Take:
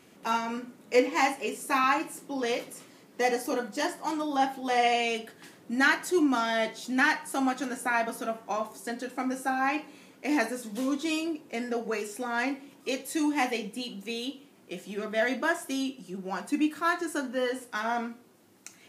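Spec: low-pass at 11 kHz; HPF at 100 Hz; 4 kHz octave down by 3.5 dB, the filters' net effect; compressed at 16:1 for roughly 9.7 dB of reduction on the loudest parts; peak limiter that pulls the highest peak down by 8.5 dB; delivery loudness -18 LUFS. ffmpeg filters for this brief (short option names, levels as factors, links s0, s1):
-af "highpass=100,lowpass=11000,equalizer=f=4000:t=o:g=-5,acompressor=threshold=0.0447:ratio=16,volume=7.5,alimiter=limit=0.422:level=0:latency=1"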